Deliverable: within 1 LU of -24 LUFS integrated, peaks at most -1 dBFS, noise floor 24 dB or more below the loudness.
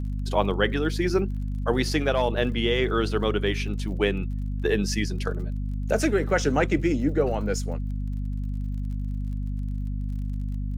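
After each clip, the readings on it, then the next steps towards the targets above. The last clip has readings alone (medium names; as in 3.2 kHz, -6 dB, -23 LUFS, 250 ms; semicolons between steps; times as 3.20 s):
tick rate 42 per s; hum 50 Hz; highest harmonic 250 Hz; hum level -26 dBFS; loudness -26.5 LUFS; peak level -7.5 dBFS; loudness target -24.0 LUFS
-> de-click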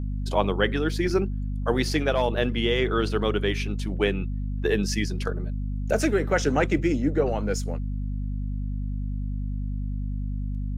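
tick rate 0.19 per s; hum 50 Hz; highest harmonic 250 Hz; hum level -26 dBFS
-> hum notches 50/100/150/200/250 Hz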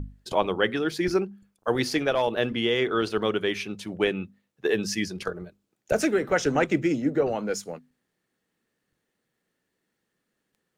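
hum not found; loudness -26.5 LUFS; peak level -9.0 dBFS; loudness target -24.0 LUFS
-> trim +2.5 dB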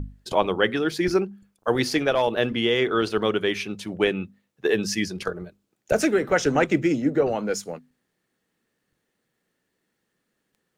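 loudness -24.0 LUFS; peak level -6.5 dBFS; noise floor -77 dBFS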